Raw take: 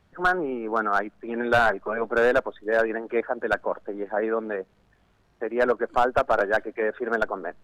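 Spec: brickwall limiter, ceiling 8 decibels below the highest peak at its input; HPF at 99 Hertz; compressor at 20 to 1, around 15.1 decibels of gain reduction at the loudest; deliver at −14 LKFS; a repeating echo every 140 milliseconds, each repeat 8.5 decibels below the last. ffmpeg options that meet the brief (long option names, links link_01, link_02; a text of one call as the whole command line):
ffmpeg -i in.wav -af "highpass=99,acompressor=threshold=-31dB:ratio=20,alimiter=level_in=4dB:limit=-24dB:level=0:latency=1,volume=-4dB,aecho=1:1:140|280|420|560:0.376|0.143|0.0543|0.0206,volume=24dB" out.wav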